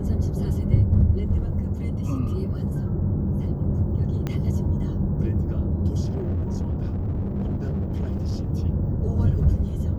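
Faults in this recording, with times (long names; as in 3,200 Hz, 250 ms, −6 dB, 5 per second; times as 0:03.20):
0:04.27: click −15 dBFS
0:06.04–0:08.51: clipping −22 dBFS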